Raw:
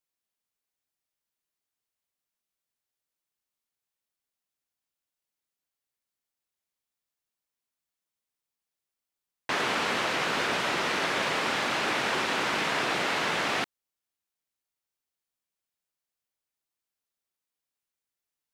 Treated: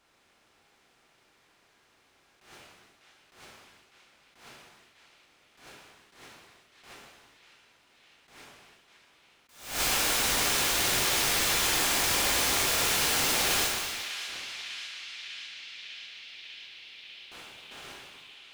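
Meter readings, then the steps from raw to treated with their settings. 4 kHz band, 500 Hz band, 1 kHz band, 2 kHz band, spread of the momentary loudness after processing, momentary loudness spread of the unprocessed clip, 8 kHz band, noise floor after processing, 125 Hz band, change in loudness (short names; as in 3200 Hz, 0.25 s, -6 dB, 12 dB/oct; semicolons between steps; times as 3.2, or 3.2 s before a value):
+4.5 dB, -3.5 dB, -3.5 dB, -1.5 dB, 21 LU, 2 LU, +13.5 dB, -66 dBFS, +2.0 dB, +1.5 dB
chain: per-bin compression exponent 0.4; low shelf 94 Hz +11.5 dB; gate with hold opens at -38 dBFS; in parallel at +2 dB: compressor, threshold -40 dBFS, peak gain reduction 18 dB; on the sum: wrapped overs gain 20.5 dB; on a send: narrowing echo 0.598 s, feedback 83%, band-pass 2900 Hz, level -10 dB; on the sum: non-linear reverb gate 0.49 s falling, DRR -4.5 dB; attack slew limiter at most 110 dB/s; gain -7 dB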